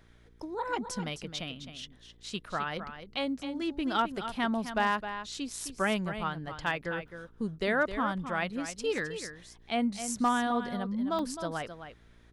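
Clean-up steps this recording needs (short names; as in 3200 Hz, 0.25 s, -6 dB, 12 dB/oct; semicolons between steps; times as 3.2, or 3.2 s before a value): clip repair -18.5 dBFS; de-hum 58.3 Hz, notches 8; interpolate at 2.96/7.08/8.98/11.19, 1.3 ms; inverse comb 0.262 s -10 dB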